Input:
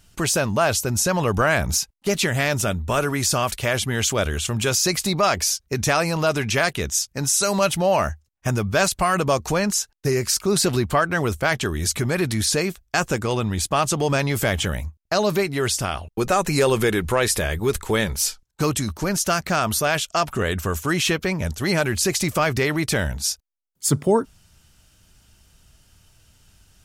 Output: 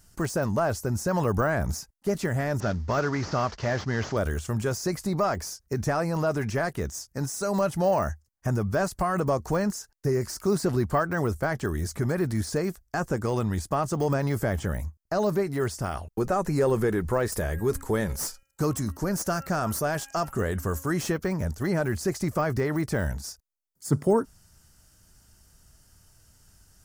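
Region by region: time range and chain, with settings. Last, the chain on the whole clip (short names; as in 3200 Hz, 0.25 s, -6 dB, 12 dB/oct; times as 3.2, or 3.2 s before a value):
2.6–4.17 CVSD 32 kbps + HPF 43 Hz
17.32–21.12 high shelf 4400 Hz +9.5 dB + de-hum 271.4 Hz, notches 11
whole clip: high shelf 6300 Hz +4.5 dB; de-esser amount 85%; band shelf 3000 Hz -8.5 dB 1 oct; gain -3 dB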